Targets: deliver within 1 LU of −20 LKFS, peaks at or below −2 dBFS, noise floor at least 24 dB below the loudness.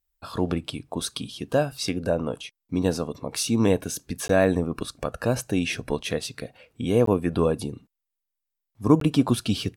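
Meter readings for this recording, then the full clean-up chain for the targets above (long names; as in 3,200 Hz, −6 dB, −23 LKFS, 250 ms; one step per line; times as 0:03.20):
number of dropouts 3; longest dropout 13 ms; integrated loudness −25.5 LKFS; sample peak −4.5 dBFS; target loudness −20.0 LKFS
→ repair the gap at 0:04.28/0:07.06/0:09.00, 13 ms
level +5.5 dB
brickwall limiter −2 dBFS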